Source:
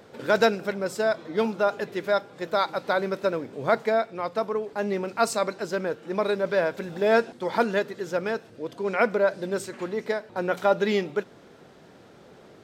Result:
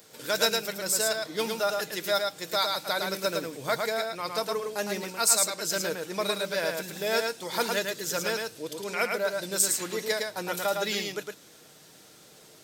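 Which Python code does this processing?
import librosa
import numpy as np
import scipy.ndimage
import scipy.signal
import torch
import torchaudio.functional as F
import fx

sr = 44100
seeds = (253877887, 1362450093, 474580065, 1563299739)

y = F.preemphasis(torch.from_numpy(x), 0.8).numpy()
y = fx.rider(y, sr, range_db=3, speed_s=0.5)
y = fx.high_shelf(y, sr, hz=3300.0, db=10.5)
y = y + 0.31 * np.pad(y, (int(6.5 * sr / 1000.0), 0))[:len(y)]
y = y + 10.0 ** (-4.0 / 20.0) * np.pad(y, (int(109 * sr / 1000.0), 0))[:len(y)]
y = y * librosa.db_to_amplitude(5.5)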